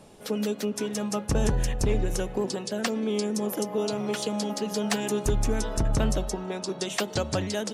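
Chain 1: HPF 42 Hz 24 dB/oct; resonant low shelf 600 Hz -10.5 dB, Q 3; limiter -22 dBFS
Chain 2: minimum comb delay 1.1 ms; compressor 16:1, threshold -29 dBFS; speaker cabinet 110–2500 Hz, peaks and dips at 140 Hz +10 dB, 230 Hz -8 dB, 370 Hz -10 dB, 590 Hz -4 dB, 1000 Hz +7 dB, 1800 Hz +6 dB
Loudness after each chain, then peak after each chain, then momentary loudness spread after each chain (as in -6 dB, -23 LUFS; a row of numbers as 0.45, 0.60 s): -34.0, -36.5 LUFS; -22.0, -18.5 dBFS; 4, 4 LU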